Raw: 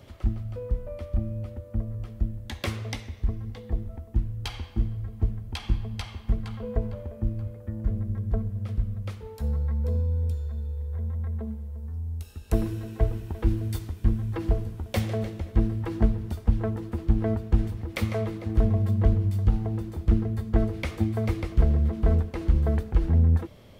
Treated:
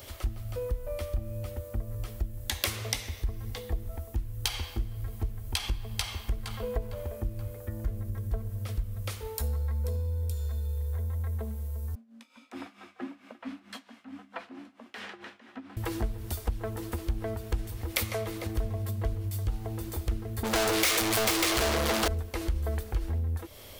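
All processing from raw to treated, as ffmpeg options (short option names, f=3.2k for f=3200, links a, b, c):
-filter_complex "[0:a]asettb=1/sr,asplit=3[a][b][c];[a]atrim=end=11.954[d];[b]atrim=start=11.95:end=15.77,asetpts=PTS-STARTPTS,afade=t=in:d=0.004:c=qsin,afade=t=out:st=3.816:d=0.004:c=qsin,tremolo=f=4.5:d=0.78,afreqshift=-310,highpass=520,lowpass=2.3k[e];[c]atrim=start=15.766[f];[d][e]acrossfade=d=0.004:c1=hsin:c2=qsin[g];[g][f]acrossfade=d=0.004:c1=qsin:c2=hsin,asettb=1/sr,asplit=3[h][i][j];[h]atrim=end=20.434[k];[i]atrim=start=20.43:end=22.08,asetpts=PTS-STARTPTS,afade=t=in:d=0.004:c=qsin,afade=t=out:st=1.646:d=0.004:c=qsin,highpass=f=98:p=1,asplit=2[l][m];[m]highpass=f=720:p=1,volume=41dB,asoftclip=type=tanh:threshold=-11.5dB[n];[l][n]amix=inputs=2:normalize=0,lowpass=f=2.5k:p=1,volume=-6dB,adynamicequalizer=threshold=0.0141:dfrequency=3300:dqfactor=0.7:tfrequency=3300:tqfactor=0.7:attack=5:release=100:ratio=0.375:range=3:mode=boostabove:tftype=highshelf[o];[j]atrim=start=22.076[p];[k][o]acrossfade=d=0.004:c1=hsin:c2=qsin[q];[q][p]acrossfade=d=0.004:c1=qsin:c2=hsin,aemphasis=mode=production:type=75kf,acompressor=threshold=-30dB:ratio=4,equalizer=f=170:t=o:w=1.2:g=-13.5,volume=4.5dB"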